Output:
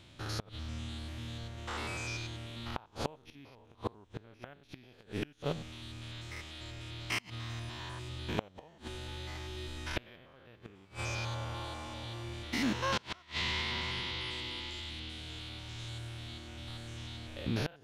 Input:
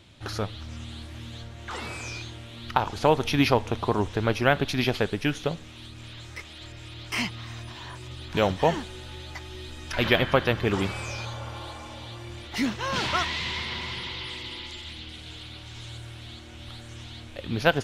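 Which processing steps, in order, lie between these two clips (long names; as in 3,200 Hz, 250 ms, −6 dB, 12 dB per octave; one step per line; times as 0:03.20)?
spectrum averaged block by block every 100 ms
gate with flip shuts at −19 dBFS, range −29 dB
level −1.5 dB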